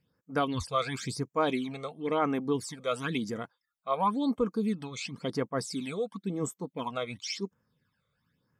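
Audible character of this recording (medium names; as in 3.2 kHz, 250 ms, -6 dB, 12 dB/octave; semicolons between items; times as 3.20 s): phasing stages 12, 0.96 Hz, lowest notch 280–4100 Hz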